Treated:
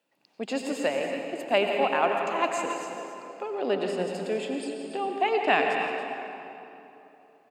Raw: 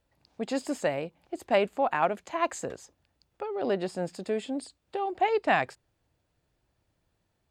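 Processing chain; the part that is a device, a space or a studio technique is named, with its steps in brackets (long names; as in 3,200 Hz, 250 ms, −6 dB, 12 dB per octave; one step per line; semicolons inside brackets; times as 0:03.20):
stadium PA (high-pass filter 170 Hz 24 dB per octave; parametric band 2,700 Hz +7.5 dB 0.34 octaves; loudspeakers that aren't time-aligned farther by 58 metres −11 dB, 96 metres −11 dB; convolution reverb RT60 3.1 s, pre-delay 82 ms, DRR 3.5 dB)
high-pass filter 170 Hz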